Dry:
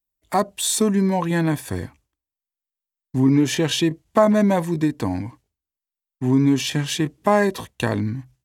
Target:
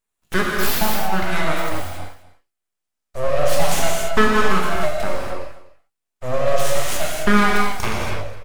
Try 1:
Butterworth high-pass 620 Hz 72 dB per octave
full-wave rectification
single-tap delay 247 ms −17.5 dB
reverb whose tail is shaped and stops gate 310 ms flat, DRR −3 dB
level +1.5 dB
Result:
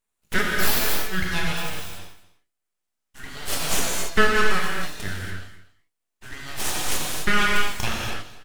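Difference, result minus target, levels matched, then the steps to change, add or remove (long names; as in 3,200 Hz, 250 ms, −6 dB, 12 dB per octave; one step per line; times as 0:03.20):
500 Hz band −6.5 dB
change: Butterworth high-pass 240 Hz 72 dB per octave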